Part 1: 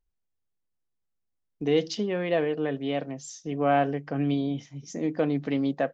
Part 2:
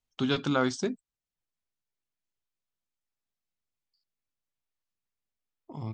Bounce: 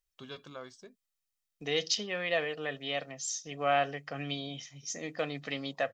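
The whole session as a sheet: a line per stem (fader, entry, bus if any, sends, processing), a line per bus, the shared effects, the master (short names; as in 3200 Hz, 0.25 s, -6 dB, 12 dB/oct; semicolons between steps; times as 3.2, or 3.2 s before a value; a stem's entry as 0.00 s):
-3.0 dB, 0.00 s, no send, tilt shelf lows -9.5 dB, about 1100 Hz; comb 1.6 ms, depth 39%
-13.0 dB, 0.00 s, no send, low shelf 120 Hz -11.5 dB; comb 1.8 ms, depth 48%; auto duck -14 dB, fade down 1.65 s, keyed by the first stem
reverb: off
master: dry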